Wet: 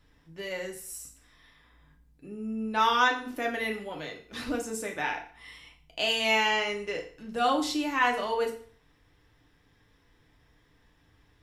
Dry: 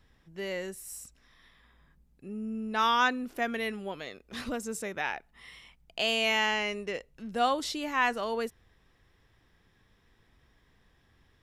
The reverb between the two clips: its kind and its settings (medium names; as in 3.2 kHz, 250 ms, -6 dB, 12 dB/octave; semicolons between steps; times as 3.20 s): FDN reverb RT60 0.47 s, low-frequency decay 1×, high-frequency decay 0.95×, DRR 0.5 dB; trim -1 dB